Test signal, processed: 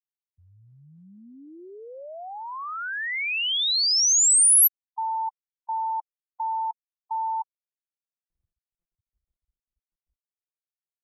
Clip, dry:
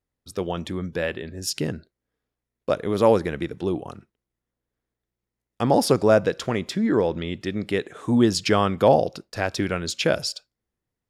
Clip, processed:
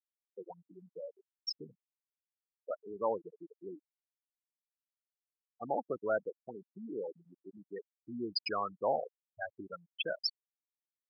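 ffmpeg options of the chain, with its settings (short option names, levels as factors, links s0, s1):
-af "afftfilt=real='re*gte(hypot(re,im),0.251)':imag='im*gte(hypot(re,im),0.251)':win_size=1024:overlap=0.75,aderivative,volume=2.11"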